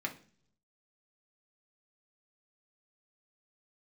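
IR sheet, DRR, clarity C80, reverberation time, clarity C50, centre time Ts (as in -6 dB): 0.5 dB, 19.0 dB, 0.45 s, 13.5 dB, 9 ms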